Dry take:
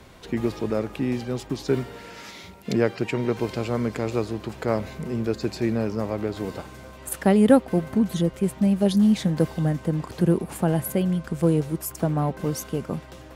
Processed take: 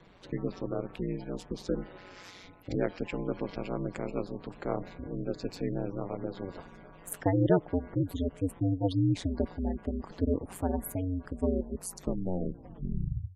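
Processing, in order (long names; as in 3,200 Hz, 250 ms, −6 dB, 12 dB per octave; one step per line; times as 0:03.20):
turntable brake at the end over 1.67 s
gate on every frequency bin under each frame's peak −25 dB strong
ring modulation 92 Hz
level −5.5 dB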